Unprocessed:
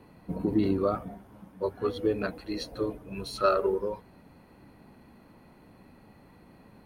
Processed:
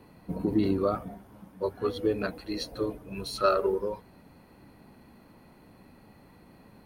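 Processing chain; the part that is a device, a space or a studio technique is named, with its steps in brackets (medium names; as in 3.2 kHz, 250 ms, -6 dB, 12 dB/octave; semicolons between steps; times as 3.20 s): presence and air boost (peaking EQ 4.7 kHz +2 dB; treble shelf 9.5 kHz +5.5 dB)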